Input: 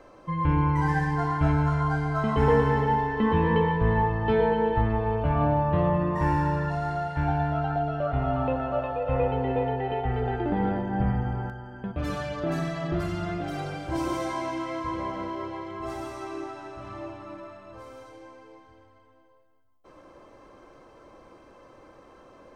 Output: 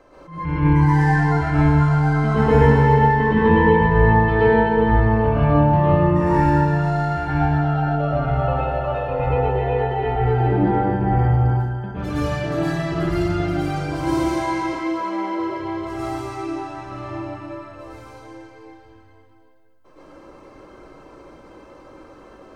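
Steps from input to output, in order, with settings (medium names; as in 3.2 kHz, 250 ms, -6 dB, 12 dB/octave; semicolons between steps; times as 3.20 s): 10.46–10.97 s: treble shelf 4.4 kHz -5.5 dB; 14.62–15.39 s: Chebyshev high-pass 190 Hz, order 8; reverberation RT60 0.75 s, pre-delay 103 ms, DRR -7.5 dB; attacks held to a fixed rise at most 110 dB/s; trim -1 dB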